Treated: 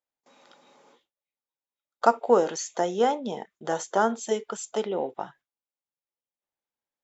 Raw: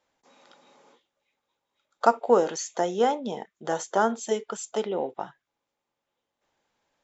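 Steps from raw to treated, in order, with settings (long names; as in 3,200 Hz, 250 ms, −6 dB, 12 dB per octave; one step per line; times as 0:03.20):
noise gate with hold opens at −52 dBFS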